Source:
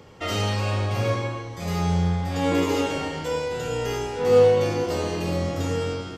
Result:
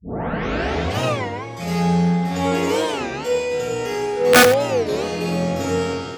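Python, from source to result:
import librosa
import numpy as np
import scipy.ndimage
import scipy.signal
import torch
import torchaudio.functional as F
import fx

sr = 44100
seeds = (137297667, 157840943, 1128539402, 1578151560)

p1 = fx.tape_start_head(x, sr, length_s=0.99)
p2 = fx.low_shelf(p1, sr, hz=140.0, db=-8.5)
p3 = fx.room_shoebox(p2, sr, seeds[0], volume_m3=580.0, walls='furnished', distance_m=1.6)
p4 = (np.mod(10.0 ** (6.5 / 20.0) * p3 + 1.0, 2.0) - 1.0) / 10.0 ** (6.5 / 20.0)
p5 = scipy.signal.sosfilt(scipy.signal.butter(2, 72.0, 'highpass', fs=sr, output='sos'), p4)
p6 = fx.notch(p5, sr, hz=1000.0, q=11.0)
p7 = p6 + fx.echo_single(p6, sr, ms=92, db=-13.0, dry=0)
p8 = fx.rider(p7, sr, range_db=4, speed_s=2.0)
p9 = fx.record_warp(p8, sr, rpm=33.33, depth_cents=250.0)
y = p9 * librosa.db_to_amplitude(1.0)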